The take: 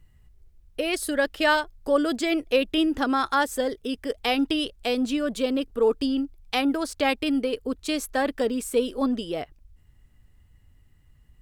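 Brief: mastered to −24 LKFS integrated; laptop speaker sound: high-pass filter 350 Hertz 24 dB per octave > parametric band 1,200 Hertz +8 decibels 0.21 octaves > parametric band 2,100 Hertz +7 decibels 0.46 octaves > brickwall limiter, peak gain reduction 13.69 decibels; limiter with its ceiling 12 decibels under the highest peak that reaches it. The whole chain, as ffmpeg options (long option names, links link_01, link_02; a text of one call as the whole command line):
ffmpeg -i in.wav -af "alimiter=limit=-21dB:level=0:latency=1,highpass=frequency=350:width=0.5412,highpass=frequency=350:width=1.3066,equalizer=frequency=1200:width_type=o:width=0.21:gain=8,equalizer=frequency=2100:width_type=o:width=0.46:gain=7,volume=14dB,alimiter=limit=-15.5dB:level=0:latency=1" out.wav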